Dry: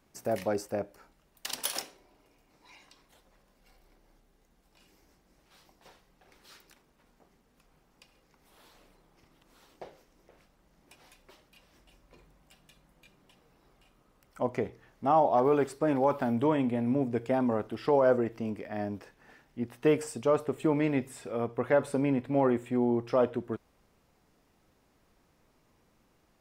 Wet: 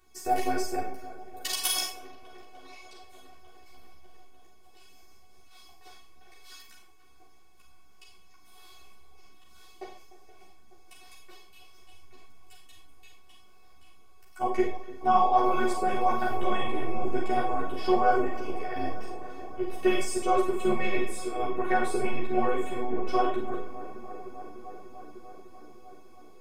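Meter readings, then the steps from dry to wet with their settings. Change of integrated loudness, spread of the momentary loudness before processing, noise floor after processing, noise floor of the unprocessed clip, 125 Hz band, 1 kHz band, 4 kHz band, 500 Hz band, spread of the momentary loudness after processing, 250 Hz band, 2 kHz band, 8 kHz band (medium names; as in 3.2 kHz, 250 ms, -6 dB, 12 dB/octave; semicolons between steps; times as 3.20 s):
+0.5 dB, 13 LU, -50 dBFS, -68 dBFS, -6.0 dB, +6.0 dB, +7.5 dB, -1.5 dB, 20 LU, -2.5 dB, +6.0 dB, no reading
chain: feedback echo behind a low-pass 299 ms, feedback 81%, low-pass 1.6 kHz, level -14.5 dB; robot voice 372 Hz; Schroeder reverb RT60 0.39 s, combs from 30 ms, DRR 2.5 dB; three-phase chorus; trim +9 dB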